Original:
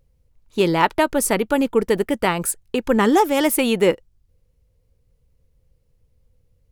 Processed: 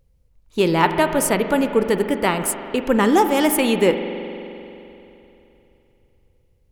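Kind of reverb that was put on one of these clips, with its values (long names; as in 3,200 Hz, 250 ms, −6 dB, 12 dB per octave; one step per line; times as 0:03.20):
spring reverb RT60 3.1 s, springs 43 ms, chirp 80 ms, DRR 7.5 dB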